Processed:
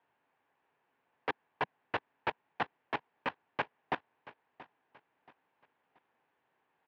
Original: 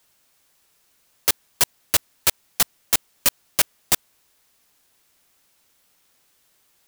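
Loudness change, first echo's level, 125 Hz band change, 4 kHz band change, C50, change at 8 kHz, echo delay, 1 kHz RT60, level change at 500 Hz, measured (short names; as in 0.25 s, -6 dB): -17.5 dB, -18.5 dB, -11.0 dB, -22.0 dB, none, under -40 dB, 0.679 s, none, -5.0 dB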